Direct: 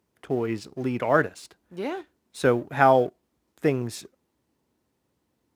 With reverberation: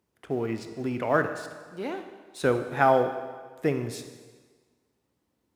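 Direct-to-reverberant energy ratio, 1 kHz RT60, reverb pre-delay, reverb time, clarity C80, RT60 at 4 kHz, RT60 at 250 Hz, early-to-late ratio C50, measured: 7.5 dB, 1.5 s, 26 ms, 1.5 s, 10.5 dB, 1.4 s, 1.3 s, 8.5 dB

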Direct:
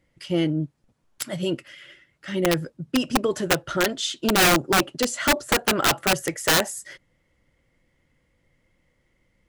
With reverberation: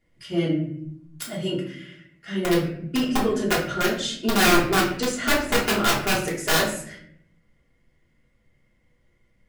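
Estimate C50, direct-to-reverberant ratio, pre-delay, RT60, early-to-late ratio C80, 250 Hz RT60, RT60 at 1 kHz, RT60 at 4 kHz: 6.0 dB, -5.5 dB, 3 ms, 0.65 s, 10.0 dB, 1.0 s, 0.55 s, 0.45 s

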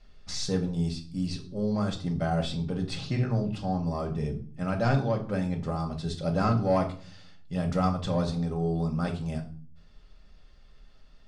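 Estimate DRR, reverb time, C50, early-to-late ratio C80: 1.5 dB, 0.45 s, 12.0 dB, 17.0 dB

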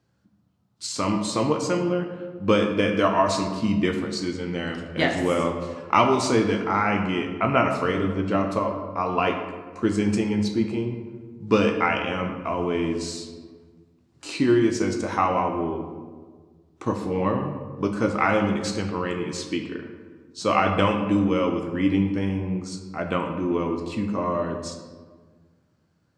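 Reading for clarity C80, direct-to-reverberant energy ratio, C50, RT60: 8.0 dB, 4.5 dB, 6.0 dB, 1.5 s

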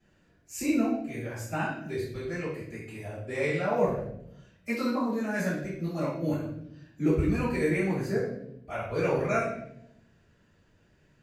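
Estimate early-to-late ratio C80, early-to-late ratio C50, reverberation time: 6.0 dB, 2.5 dB, 0.75 s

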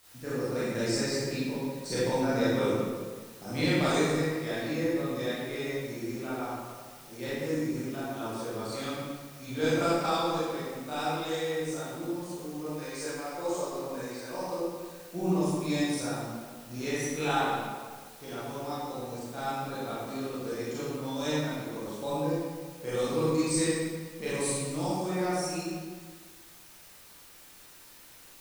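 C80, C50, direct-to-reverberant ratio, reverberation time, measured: -1.0 dB, -4.5 dB, -11.0 dB, 1.6 s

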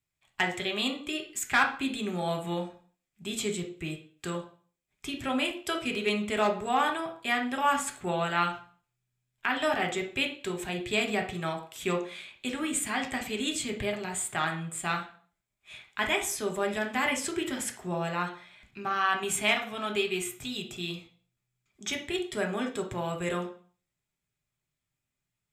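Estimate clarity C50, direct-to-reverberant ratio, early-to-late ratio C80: 9.5 dB, 2.0 dB, 15.5 dB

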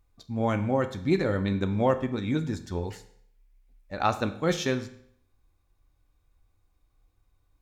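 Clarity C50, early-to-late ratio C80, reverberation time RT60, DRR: 13.0 dB, 16.0 dB, 0.65 s, 9.0 dB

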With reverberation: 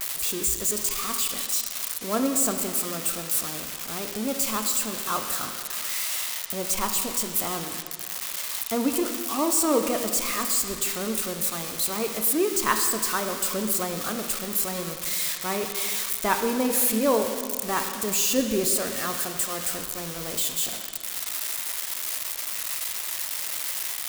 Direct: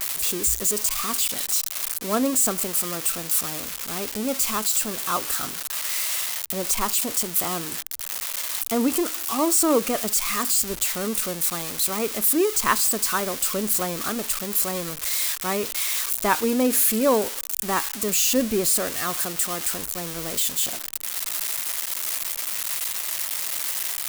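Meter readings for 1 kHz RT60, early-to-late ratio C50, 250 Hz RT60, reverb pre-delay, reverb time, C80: 2.0 s, 6.5 dB, 2.0 s, 5 ms, 2.0 s, 7.5 dB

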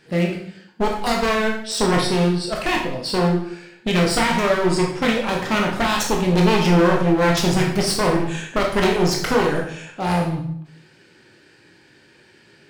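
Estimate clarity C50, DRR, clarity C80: 4.5 dB, -1.0 dB, 8.0 dB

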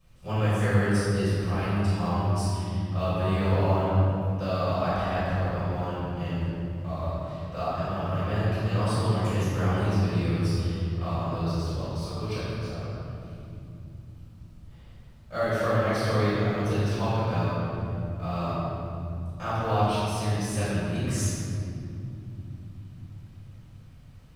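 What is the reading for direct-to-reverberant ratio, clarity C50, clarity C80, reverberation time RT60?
-15.0 dB, -4.5 dB, -2.5 dB, 2.8 s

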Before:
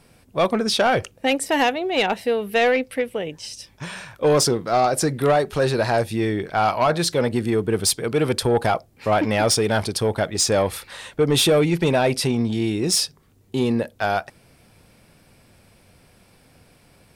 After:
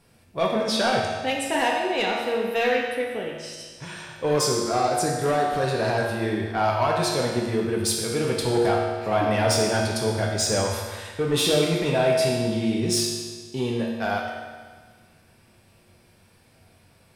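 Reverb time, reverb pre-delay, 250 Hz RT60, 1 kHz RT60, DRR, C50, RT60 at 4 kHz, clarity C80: 1.6 s, 3 ms, 1.6 s, 1.6 s, -2.5 dB, 1.0 dB, 1.5 s, 3.0 dB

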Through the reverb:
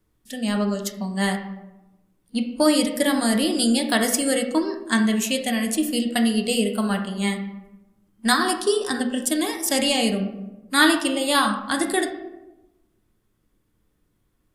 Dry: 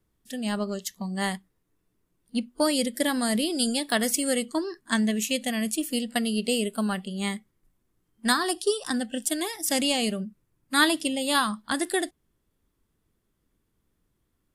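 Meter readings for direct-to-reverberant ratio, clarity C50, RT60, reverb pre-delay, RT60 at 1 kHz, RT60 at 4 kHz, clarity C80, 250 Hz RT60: 3.5 dB, 7.5 dB, 1.0 s, 3 ms, 0.90 s, 0.55 s, 11.0 dB, 1.2 s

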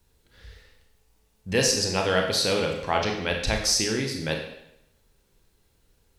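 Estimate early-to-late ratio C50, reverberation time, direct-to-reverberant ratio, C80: 5.5 dB, 0.80 s, 2.0 dB, 7.5 dB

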